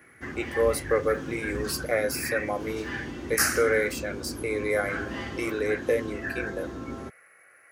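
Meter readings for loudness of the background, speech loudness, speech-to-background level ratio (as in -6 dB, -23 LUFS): -37.5 LUFS, -28.0 LUFS, 9.5 dB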